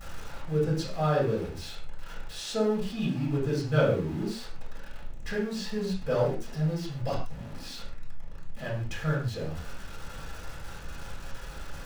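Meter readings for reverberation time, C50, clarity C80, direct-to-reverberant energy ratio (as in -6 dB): no single decay rate, 4.0 dB, 8.5 dB, -6.5 dB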